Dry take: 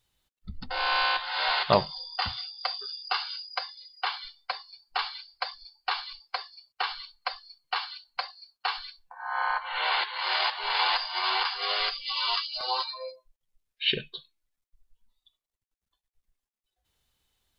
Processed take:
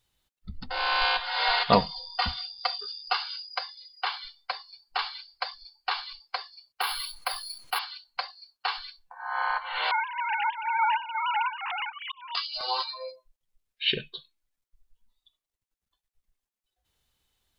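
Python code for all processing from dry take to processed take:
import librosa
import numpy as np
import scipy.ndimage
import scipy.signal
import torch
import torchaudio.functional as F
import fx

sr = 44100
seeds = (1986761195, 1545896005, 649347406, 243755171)

y = fx.chain(x, sr, fx.low_shelf(hz=200.0, db=6.5),
    fx.comb(ms=4.2, depth=0.64), at=(1.01, 3.14))
y = fx.chain(y, sr, fx.resample_bad(factor=3, down='none', up='hold'),
    fx.notch(hz=1800.0, q=24.0),
    fx.env_flatten(amount_pct=50), at=(6.81, 7.79))
y = fx.chain(y, sr, fx.sine_speech(),
    fx.auto_swell(attack_ms=748.0), at=(9.91, 12.35))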